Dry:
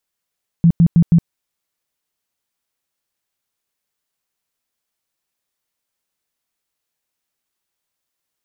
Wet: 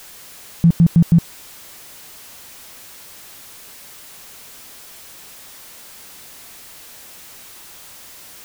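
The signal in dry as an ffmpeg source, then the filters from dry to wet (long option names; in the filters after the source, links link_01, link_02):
-f lavfi -i "aevalsrc='0.473*sin(2*PI*168*mod(t,0.16))*lt(mod(t,0.16),11/168)':duration=0.64:sample_rate=44100"
-af "aeval=exprs='val(0)+0.5*0.02*sgn(val(0))':channel_layout=same"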